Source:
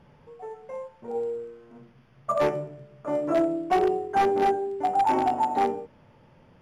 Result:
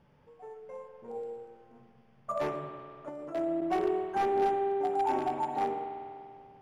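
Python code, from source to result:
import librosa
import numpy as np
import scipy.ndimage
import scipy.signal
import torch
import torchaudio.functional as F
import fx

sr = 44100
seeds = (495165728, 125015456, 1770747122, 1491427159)

y = fx.rev_spring(x, sr, rt60_s=2.3, pass_ms=(48,), chirp_ms=80, drr_db=4.5)
y = fx.level_steps(y, sr, step_db=11, at=(3.09, 3.62))
y = y * 10.0 ** (-8.5 / 20.0)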